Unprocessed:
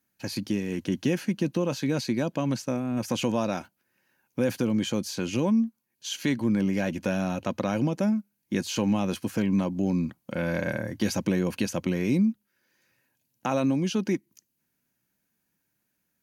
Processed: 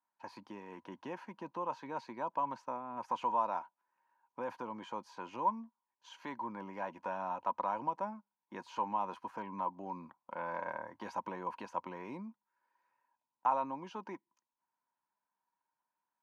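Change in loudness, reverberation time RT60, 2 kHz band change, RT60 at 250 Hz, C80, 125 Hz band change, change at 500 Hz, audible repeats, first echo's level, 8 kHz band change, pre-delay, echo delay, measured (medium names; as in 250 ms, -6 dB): -12.0 dB, no reverb, -13.0 dB, no reverb, no reverb, -26.0 dB, -13.0 dB, no echo, no echo, under -25 dB, no reverb, no echo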